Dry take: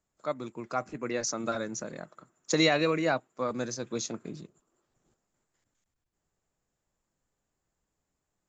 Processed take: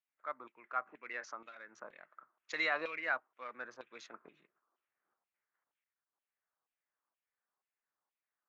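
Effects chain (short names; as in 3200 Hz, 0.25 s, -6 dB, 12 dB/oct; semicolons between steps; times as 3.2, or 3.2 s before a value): Wiener smoothing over 9 samples; LPF 5000 Hz 12 dB/oct; low shelf 140 Hz -11 dB; 1.3–1.78 compressor 6:1, threshold -36 dBFS, peak gain reduction 9.5 dB; LFO band-pass saw down 2.1 Hz 970–3100 Hz; gain +1 dB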